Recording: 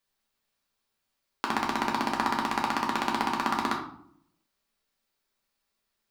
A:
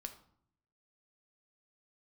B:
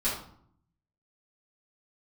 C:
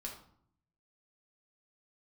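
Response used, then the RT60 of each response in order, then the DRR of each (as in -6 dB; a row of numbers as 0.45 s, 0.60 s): C; 0.65 s, 0.60 s, 0.65 s; 6.0 dB, -11.0 dB, -1.5 dB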